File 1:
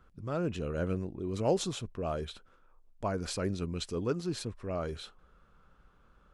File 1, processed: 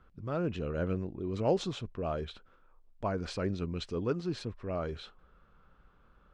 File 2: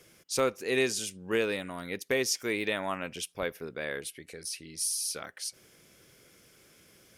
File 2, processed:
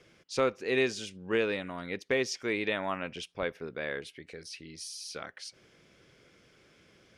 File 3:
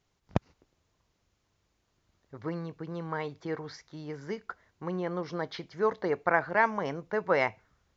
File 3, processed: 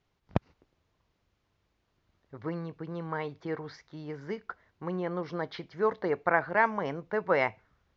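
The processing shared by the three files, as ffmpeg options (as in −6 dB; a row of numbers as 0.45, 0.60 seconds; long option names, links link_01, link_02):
-af "lowpass=4200"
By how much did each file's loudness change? 0.0, −1.0, 0.0 LU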